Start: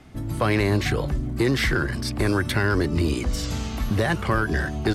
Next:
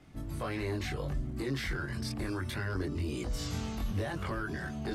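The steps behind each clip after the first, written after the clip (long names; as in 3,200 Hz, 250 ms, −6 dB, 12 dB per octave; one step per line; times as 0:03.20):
brickwall limiter −19 dBFS, peak gain reduction 6 dB
multi-voice chorus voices 2, 0.71 Hz, delay 22 ms, depth 1 ms
level −5.5 dB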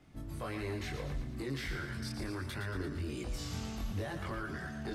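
feedback echo with a high-pass in the loop 115 ms, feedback 58%, high-pass 640 Hz, level −7 dB
level −4 dB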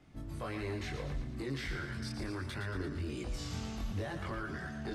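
Bessel low-pass filter 8,900 Hz, order 2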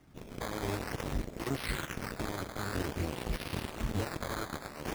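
harmonic generator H 3 −21 dB, 7 −14 dB, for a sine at −26.5 dBFS
sample-and-hold swept by an LFO 11×, swing 100% 0.51 Hz
level +4.5 dB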